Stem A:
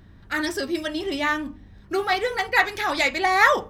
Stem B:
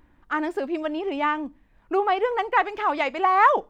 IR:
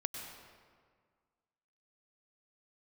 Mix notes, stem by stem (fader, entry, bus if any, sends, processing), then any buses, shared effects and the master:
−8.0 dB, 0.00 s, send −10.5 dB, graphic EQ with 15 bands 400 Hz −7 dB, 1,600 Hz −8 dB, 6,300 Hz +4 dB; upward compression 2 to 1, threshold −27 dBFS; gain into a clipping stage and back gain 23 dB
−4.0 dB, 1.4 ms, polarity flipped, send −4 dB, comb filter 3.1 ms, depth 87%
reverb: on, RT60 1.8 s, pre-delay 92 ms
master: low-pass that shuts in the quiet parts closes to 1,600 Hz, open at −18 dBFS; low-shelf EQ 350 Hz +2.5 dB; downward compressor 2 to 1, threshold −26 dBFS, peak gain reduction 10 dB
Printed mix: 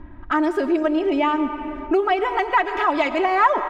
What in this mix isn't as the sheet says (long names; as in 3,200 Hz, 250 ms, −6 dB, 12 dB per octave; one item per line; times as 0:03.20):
stem A −8.0 dB → −15.5 dB
stem B −4.0 dB → +8.0 dB